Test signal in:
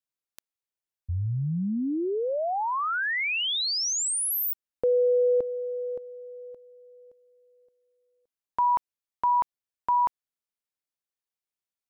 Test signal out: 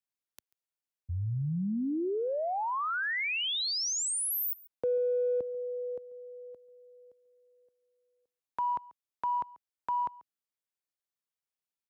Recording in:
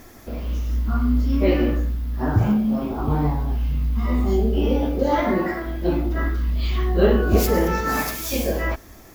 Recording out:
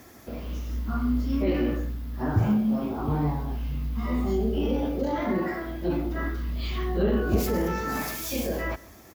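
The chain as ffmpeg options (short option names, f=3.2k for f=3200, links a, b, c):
-filter_complex "[0:a]highpass=71,acrossover=split=330[a][b];[b]acompressor=threshold=-25dB:ratio=5:attack=1.1:release=22:knee=2.83:detection=peak[c];[a][c]amix=inputs=2:normalize=0,aecho=1:1:139:0.0841,volume=-3.5dB"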